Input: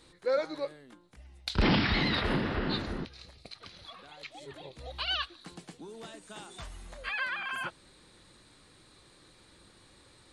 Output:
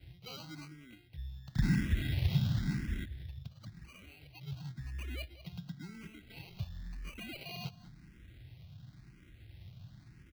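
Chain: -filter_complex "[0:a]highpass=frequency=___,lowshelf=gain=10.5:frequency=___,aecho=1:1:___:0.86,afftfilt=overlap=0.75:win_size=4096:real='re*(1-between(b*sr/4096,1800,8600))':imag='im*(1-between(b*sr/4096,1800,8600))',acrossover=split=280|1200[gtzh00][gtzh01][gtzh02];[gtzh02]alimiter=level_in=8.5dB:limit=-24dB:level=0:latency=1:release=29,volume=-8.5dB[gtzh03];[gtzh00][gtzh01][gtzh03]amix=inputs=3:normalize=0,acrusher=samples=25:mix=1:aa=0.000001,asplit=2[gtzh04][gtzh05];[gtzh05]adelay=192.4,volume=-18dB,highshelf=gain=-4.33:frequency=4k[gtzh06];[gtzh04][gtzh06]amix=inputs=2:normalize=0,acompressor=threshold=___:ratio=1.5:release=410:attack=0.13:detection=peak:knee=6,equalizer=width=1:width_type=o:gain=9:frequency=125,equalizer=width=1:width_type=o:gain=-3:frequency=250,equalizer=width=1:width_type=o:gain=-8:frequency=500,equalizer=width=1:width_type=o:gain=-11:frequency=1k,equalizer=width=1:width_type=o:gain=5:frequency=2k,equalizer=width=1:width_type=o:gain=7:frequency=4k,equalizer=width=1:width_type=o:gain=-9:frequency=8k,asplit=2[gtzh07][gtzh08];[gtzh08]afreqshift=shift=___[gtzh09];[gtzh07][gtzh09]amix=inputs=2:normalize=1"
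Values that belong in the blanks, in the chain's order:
47, 140, 0.9, -41dB, 0.95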